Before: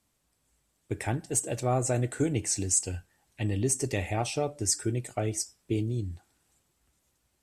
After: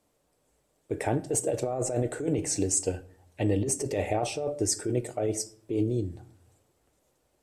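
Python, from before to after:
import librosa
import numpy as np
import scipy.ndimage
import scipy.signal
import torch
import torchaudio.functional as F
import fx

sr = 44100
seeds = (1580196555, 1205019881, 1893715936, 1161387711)

y = fx.peak_eq(x, sr, hz=510.0, db=13.5, octaves=1.6)
y = fx.over_compress(y, sr, threshold_db=-23.0, ratio=-1.0)
y = fx.room_shoebox(y, sr, seeds[0], volume_m3=700.0, walls='furnished', distance_m=0.45)
y = y * 10.0 ** (-4.0 / 20.0)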